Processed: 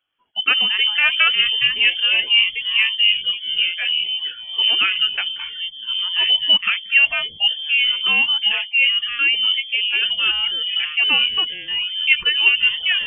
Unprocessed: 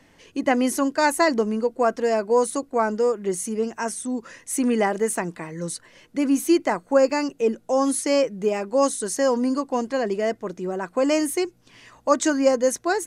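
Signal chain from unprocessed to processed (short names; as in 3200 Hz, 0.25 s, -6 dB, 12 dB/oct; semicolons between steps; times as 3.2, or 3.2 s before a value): spectral noise reduction 25 dB; echoes that change speed 0.102 s, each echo -4 st, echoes 3, each echo -6 dB; inverted band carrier 3300 Hz; gain +3 dB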